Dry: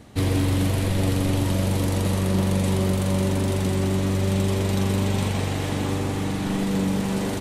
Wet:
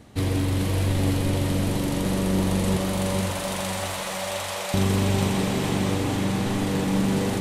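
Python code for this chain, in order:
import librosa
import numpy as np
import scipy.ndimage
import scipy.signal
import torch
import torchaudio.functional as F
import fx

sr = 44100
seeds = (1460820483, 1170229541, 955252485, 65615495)

p1 = fx.steep_highpass(x, sr, hz=540.0, slope=48, at=(2.77, 4.74))
p2 = fx.rider(p1, sr, range_db=4, speed_s=2.0)
p3 = p2 + fx.echo_diffused(p2, sr, ms=464, feedback_pct=48, wet_db=-3.5, dry=0)
y = p3 * librosa.db_to_amplitude(-1.0)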